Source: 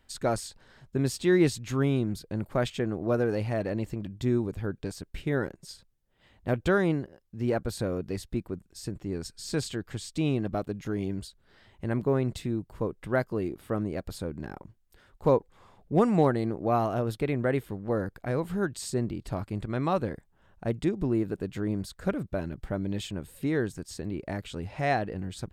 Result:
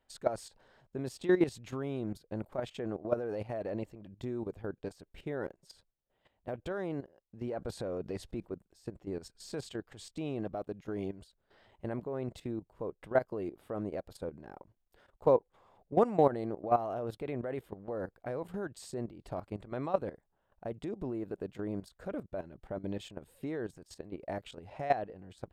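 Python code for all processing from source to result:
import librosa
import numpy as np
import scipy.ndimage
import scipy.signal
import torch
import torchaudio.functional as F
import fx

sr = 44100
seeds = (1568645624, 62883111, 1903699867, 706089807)

y = fx.chain(x, sr, fx.lowpass(hz=11000.0, slope=12),
    fx.env_flatten(amount_pct=50), at=(7.47, 8.46))
y = fx.peak_eq(y, sr, hz=640.0, db=11.0, octaves=1.9)
y = fx.level_steps(y, sr, step_db=14)
y = fx.peak_eq(y, sr, hz=3000.0, db=2.5, octaves=0.77)
y = y * librosa.db_to_amplitude(-8.0)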